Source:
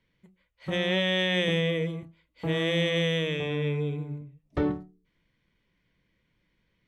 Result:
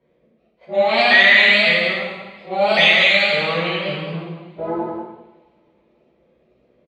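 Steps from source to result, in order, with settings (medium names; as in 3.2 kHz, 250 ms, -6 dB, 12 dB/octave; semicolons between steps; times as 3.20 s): sawtooth pitch modulation +5 st, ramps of 554 ms; tone controls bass +7 dB, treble +3 dB; slow attack 271 ms; in parallel at -8.5 dB: saturation -22 dBFS, distortion -14 dB; on the sum: auto-wah 510–3800 Hz, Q 3.2, up, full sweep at -15 dBFS; on a send: delay 191 ms -6 dB; on the sum: two-slope reverb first 0.9 s, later 3.1 s, from -27 dB, DRR -8.5 dB; loudness maximiser +14.5 dB; trim -1 dB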